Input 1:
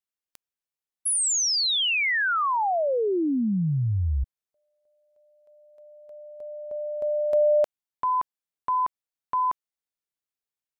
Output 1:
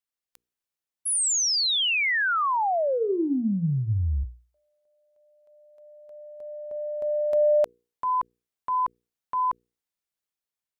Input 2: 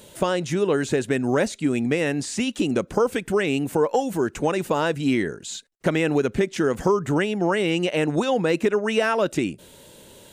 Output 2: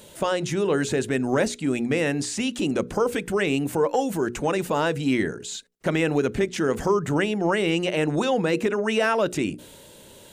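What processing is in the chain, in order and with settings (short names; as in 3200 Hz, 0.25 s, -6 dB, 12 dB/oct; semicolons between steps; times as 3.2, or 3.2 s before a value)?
transient shaper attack -3 dB, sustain +2 dB; notches 60/120/180/240/300/360/420/480 Hz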